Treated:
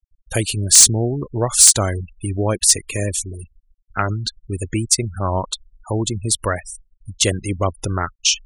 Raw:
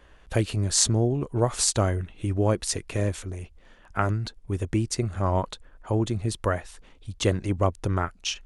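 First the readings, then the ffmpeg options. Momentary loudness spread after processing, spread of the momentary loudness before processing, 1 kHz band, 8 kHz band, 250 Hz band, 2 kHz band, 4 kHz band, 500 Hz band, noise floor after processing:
17 LU, 12 LU, +4.5 dB, +15.0 dB, +2.5 dB, +7.0 dB, +11.5 dB, +3.0 dB, -62 dBFS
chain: -af "crystalizer=i=5.5:c=0,acontrast=46,afftfilt=real='re*gte(hypot(re,im),0.0708)':imag='im*gte(hypot(re,im),0.0708)':win_size=1024:overlap=0.75,volume=-3dB"

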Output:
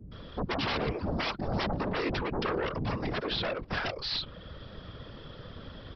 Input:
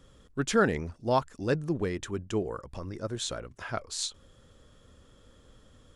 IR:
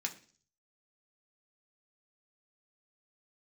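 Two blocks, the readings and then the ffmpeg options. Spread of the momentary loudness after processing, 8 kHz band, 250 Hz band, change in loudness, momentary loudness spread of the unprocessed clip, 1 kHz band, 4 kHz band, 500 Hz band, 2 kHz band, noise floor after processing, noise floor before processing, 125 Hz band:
15 LU, under -20 dB, -1.5 dB, -1.0 dB, 12 LU, -0.5 dB, +4.5 dB, -3.0 dB, +1.5 dB, -48 dBFS, -59 dBFS, 0.0 dB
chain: -filter_complex "[0:a]acrossover=split=100|620|4100[a][b][c][d];[a]acompressor=threshold=-56dB:ratio=4[e];[b]acompressor=threshold=-31dB:ratio=4[f];[c]acompressor=threshold=-41dB:ratio=4[g];[d]acompressor=threshold=-52dB:ratio=4[h];[e][f][g][h]amix=inputs=4:normalize=0,acrossover=split=310[i][j];[j]adelay=120[k];[i][k]amix=inputs=2:normalize=0,aresample=11025,aeval=exprs='0.0841*sin(PI/2*6.31*val(0)/0.0841)':c=same,aresample=44100,afftfilt=real='hypot(re,im)*cos(2*PI*random(0))':imag='hypot(re,im)*sin(2*PI*random(1))':win_size=512:overlap=0.75"

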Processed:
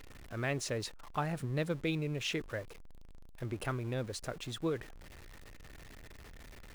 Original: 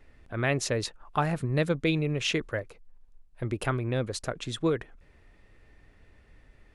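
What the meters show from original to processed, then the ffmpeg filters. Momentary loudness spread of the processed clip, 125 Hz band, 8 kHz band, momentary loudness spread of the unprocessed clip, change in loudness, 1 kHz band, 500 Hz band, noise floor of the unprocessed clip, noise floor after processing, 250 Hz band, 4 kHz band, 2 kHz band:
20 LU, -7.5 dB, -6.5 dB, 9 LU, -7.5 dB, -8.0 dB, -8.0 dB, -60 dBFS, -52 dBFS, -7.5 dB, -7.0 dB, -7.5 dB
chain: -af "aeval=exprs='val(0)+0.5*0.0119*sgn(val(0))':c=same,volume=-8.5dB"

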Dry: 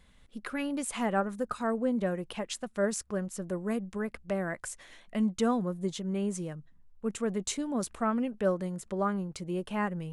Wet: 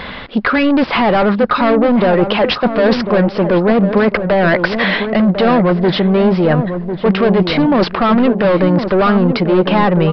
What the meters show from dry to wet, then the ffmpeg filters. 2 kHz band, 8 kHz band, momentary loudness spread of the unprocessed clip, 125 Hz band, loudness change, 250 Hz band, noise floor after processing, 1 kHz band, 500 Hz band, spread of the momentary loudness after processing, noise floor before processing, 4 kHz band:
+22.5 dB, under -10 dB, 9 LU, +21.0 dB, +19.5 dB, +19.0 dB, -28 dBFS, +20.0 dB, +20.5 dB, 3 LU, -60 dBFS, +22.0 dB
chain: -filter_complex "[0:a]asplit=2[a][b];[b]highpass=f=720:p=1,volume=27dB,asoftclip=type=tanh:threshold=-16dB[c];[a][c]amix=inputs=2:normalize=0,lowpass=f=1.3k:p=1,volume=-6dB,apsyclip=22.5dB,areverse,acompressor=threshold=-14dB:ratio=5,areverse,asplit=2[d][e];[e]adelay=1049,lowpass=f=870:p=1,volume=-7dB,asplit=2[f][g];[g]adelay=1049,lowpass=f=870:p=1,volume=0.43,asplit=2[h][i];[i]adelay=1049,lowpass=f=870:p=1,volume=0.43,asplit=2[j][k];[k]adelay=1049,lowpass=f=870:p=1,volume=0.43,asplit=2[l][m];[m]adelay=1049,lowpass=f=870:p=1,volume=0.43[n];[d][f][h][j][l][n]amix=inputs=6:normalize=0,aresample=11025,aresample=44100,volume=2dB"

